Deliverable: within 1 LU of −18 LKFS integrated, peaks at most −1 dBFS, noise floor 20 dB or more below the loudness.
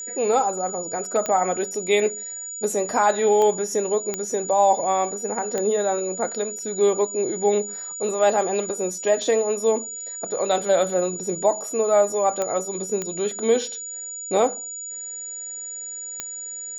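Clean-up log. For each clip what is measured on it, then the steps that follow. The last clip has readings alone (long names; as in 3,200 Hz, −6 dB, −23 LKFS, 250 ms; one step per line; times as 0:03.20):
number of clicks 7; interfering tone 6,900 Hz; level of the tone −31 dBFS; integrated loudness −23.0 LKFS; sample peak −7.0 dBFS; target loudness −18.0 LKFS
→ click removal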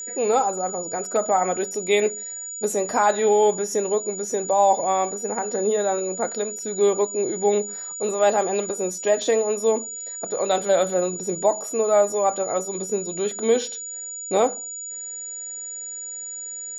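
number of clicks 0; interfering tone 6,900 Hz; level of the tone −31 dBFS
→ notch filter 6,900 Hz, Q 30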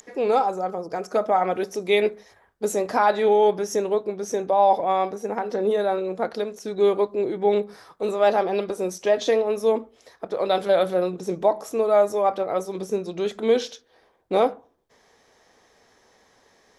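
interfering tone none found; integrated loudness −23.0 LKFS; sample peak −7.5 dBFS; target loudness −18.0 LKFS
→ level +5 dB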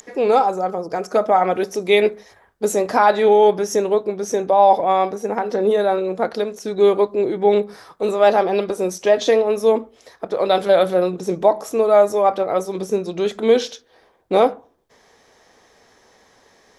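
integrated loudness −18.0 LKFS; sample peak −2.5 dBFS; background noise floor −56 dBFS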